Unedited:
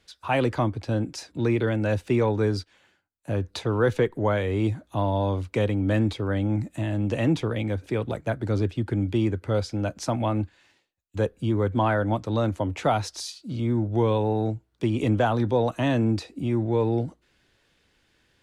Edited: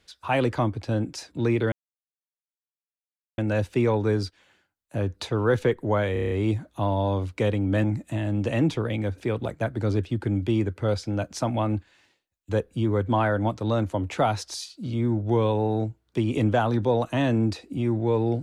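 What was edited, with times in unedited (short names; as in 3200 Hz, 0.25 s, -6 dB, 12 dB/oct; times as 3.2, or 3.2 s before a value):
1.72 insert silence 1.66 s
4.47 stutter 0.03 s, 7 plays
6–6.5 cut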